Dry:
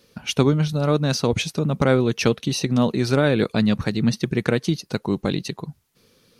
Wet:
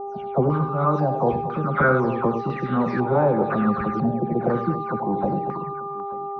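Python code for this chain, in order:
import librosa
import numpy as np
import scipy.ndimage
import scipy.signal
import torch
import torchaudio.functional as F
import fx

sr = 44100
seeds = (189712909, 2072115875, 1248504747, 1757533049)

p1 = fx.spec_delay(x, sr, highs='early', ms=256)
p2 = fx.dmg_buzz(p1, sr, base_hz=400.0, harmonics=3, level_db=-33.0, tilt_db=-4, odd_only=False)
p3 = p2 + fx.echo_multitap(p2, sr, ms=(76, 93, 102, 235, 881), db=(-11.5, -17.0, -13.0, -12.5, -19.5), dry=0)
p4 = fx.filter_held_lowpass(p3, sr, hz=2.0, low_hz=700.0, high_hz=1600.0)
y = F.gain(torch.from_numpy(p4), -3.0).numpy()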